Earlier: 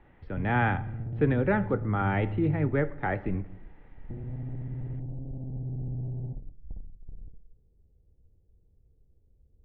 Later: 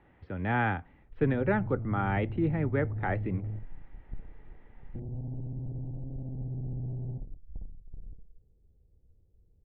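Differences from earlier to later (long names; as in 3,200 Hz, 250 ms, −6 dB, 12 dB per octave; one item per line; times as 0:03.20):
background: entry +0.85 s
reverb: off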